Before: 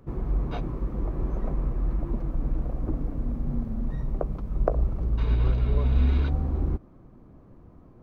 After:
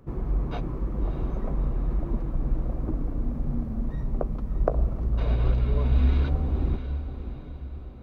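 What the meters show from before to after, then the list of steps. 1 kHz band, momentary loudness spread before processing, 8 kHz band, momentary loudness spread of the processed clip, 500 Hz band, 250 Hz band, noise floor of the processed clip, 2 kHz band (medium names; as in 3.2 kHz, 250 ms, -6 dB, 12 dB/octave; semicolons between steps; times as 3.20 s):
+0.5 dB, 8 LU, no reading, 9 LU, +0.5 dB, +0.5 dB, -39 dBFS, +0.5 dB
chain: echo that smears into a reverb 631 ms, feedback 47%, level -10 dB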